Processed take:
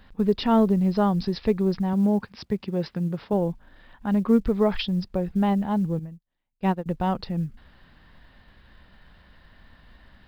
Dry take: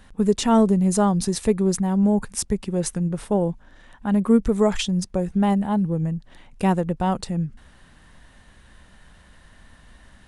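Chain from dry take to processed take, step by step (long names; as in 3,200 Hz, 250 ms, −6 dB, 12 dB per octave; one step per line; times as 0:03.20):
downsampling to 11,025 Hz
log-companded quantiser 8 bits
0:01.93–0:03.33: high-pass filter 90 Hz 12 dB per octave
0:05.99–0:06.86: expander for the loud parts 2.5 to 1, over −38 dBFS
level −2.5 dB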